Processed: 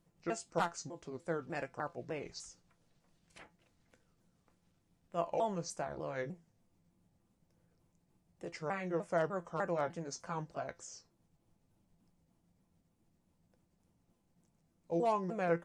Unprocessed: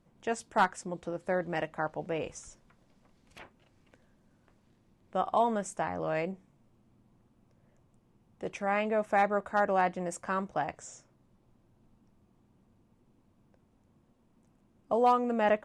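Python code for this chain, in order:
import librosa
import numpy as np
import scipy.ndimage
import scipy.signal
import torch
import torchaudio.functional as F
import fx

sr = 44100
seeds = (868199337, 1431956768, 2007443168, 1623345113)

y = fx.pitch_ramps(x, sr, semitones=-5.5, every_ms=300)
y = fx.high_shelf(y, sr, hz=4700.0, db=11.0)
y = fx.comb_fb(y, sr, f0_hz=170.0, decay_s=0.18, harmonics='all', damping=0.0, mix_pct=60)
y = F.gain(torch.from_numpy(y), -1.5).numpy()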